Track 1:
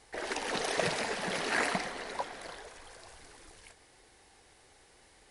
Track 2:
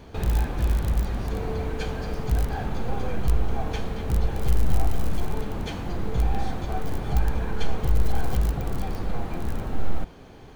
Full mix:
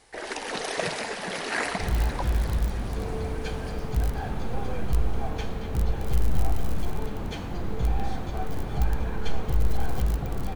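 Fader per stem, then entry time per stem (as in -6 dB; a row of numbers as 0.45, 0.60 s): +2.0, -2.0 dB; 0.00, 1.65 s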